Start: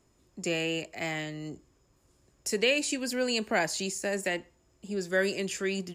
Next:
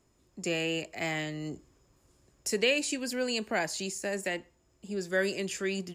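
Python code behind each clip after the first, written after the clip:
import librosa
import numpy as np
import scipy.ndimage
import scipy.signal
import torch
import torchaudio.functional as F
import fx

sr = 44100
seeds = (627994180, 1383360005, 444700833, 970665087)

y = fx.rider(x, sr, range_db=10, speed_s=2.0)
y = y * librosa.db_to_amplitude(-2.0)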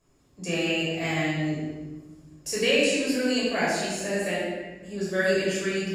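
y = x + 10.0 ** (-15.0 / 20.0) * np.pad(x, (int(161 * sr / 1000.0), 0))[:len(x)]
y = fx.room_shoebox(y, sr, seeds[0], volume_m3=920.0, walls='mixed', distance_m=5.6)
y = y * librosa.db_to_amplitude(-5.5)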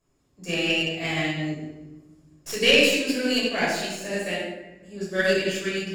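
y = fx.tracing_dist(x, sr, depth_ms=0.039)
y = fx.dynamic_eq(y, sr, hz=3300.0, q=1.3, threshold_db=-42.0, ratio=4.0, max_db=6)
y = fx.upward_expand(y, sr, threshold_db=-34.0, expansion=1.5)
y = y * librosa.db_to_amplitude(3.0)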